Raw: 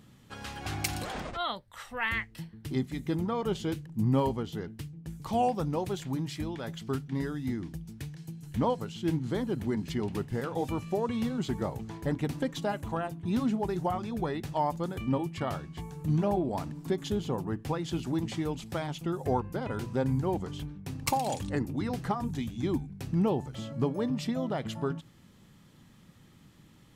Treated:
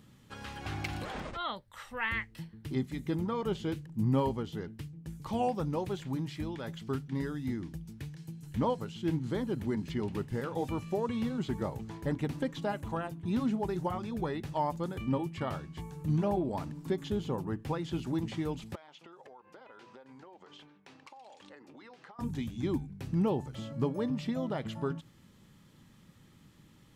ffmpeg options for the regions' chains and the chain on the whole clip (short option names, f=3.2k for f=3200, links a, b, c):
-filter_complex "[0:a]asettb=1/sr,asplit=3[a][b][c];[a]atrim=end=18.754[d];[b]atrim=start=18.75:end=22.19,asetpts=PTS-STARTPTS,afade=t=in:d=0.004:c=qsin,afade=t=out:st=3.436:d=0.004:c=qsin,highpass=560,lowpass=4.2k,acompressor=threshold=-46dB:ratio=16:attack=3.2:release=140:knee=1:detection=peak[e];[c]atrim=start=22.186[f];[d][e]acrossfade=d=0.004:c1=hsin:c2=qsin[g];[g][f]acrossfade=d=0.004:c1=qsin:c2=hsin,bandreject=f=710:w=13,acrossover=split=3800[h][i];[i]acompressor=threshold=-52dB:ratio=4:attack=1:release=60[j];[h][j]amix=inputs=2:normalize=0,volume=-2dB"